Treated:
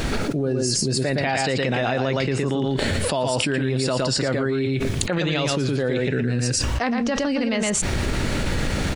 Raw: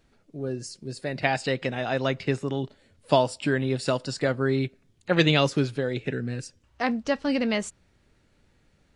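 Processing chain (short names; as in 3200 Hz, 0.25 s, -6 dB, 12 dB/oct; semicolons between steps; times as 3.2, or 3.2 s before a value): limiter -16.5 dBFS, peak gain reduction 11 dB; echo 0.115 s -5.5 dB; fast leveller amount 100%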